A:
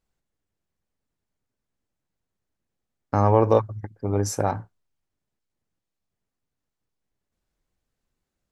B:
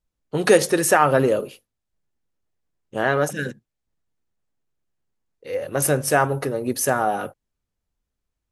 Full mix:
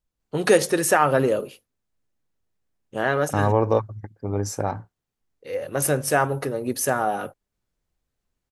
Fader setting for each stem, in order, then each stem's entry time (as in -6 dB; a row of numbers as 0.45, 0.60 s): -2.0, -2.0 dB; 0.20, 0.00 s